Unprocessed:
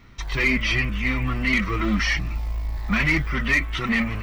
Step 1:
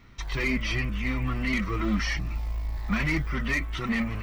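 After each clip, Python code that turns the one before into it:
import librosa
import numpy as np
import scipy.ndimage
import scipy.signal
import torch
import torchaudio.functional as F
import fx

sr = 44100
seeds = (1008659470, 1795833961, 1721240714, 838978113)

y = fx.dynamic_eq(x, sr, hz=2400.0, q=0.8, threshold_db=-33.0, ratio=4.0, max_db=-5)
y = y * librosa.db_to_amplitude(-3.5)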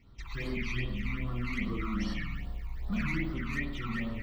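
y = fx.rev_spring(x, sr, rt60_s=1.1, pass_ms=(49,), chirp_ms=70, drr_db=-2.0)
y = fx.phaser_stages(y, sr, stages=12, low_hz=520.0, high_hz=2300.0, hz=2.5, feedback_pct=25)
y = y * librosa.db_to_amplitude(-8.0)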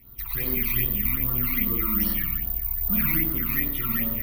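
y = (np.kron(scipy.signal.resample_poly(x, 1, 3), np.eye(3)[0]) * 3)[:len(x)]
y = y * librosa.db_to_amplitude(3.5)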